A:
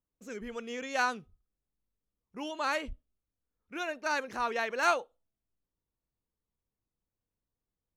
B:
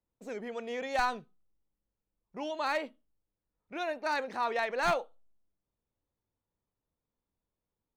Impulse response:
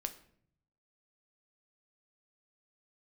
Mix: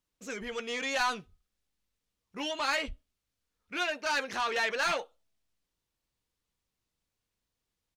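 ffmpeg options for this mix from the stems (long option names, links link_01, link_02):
-filter_complex "[0:a]alimiter=limit=-23dB:level=0:latency=1,asoftclip=type=tanh:threshold=-32dB,volume=1dB[link_01];[1:a]adelay=11,volume=-10dB[link_02];[link_01][link_02]amix=inputs=2:normalize=0,equalizer=frequency=3700:width=0.36:gain=10"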